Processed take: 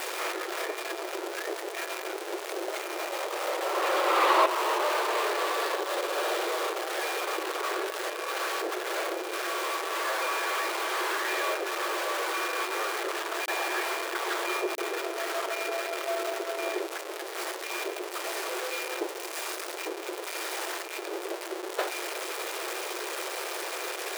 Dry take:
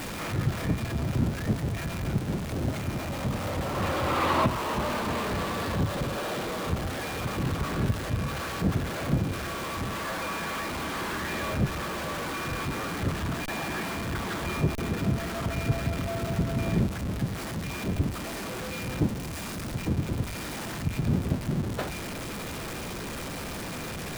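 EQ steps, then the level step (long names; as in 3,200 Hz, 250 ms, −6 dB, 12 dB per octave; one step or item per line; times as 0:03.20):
linear-phase brick-wall high-pass 330 Hz
+3.5 dB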